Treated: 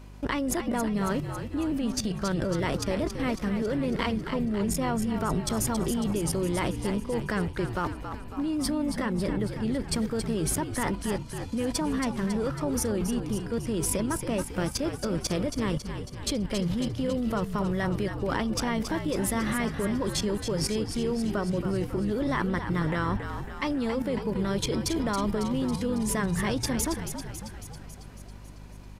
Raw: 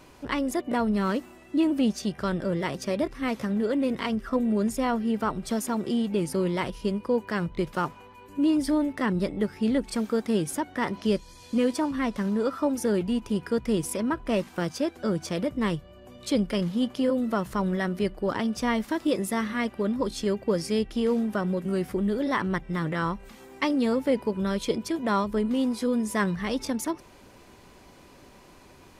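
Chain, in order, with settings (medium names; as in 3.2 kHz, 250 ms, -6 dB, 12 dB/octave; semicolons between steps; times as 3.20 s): hum 50 Hz, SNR 16 dB; level held to a coarse grid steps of 18 dB; frequency-shifting echo 275 ms, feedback 62%, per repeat -57 Hz, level -8 dB; trim +8 dB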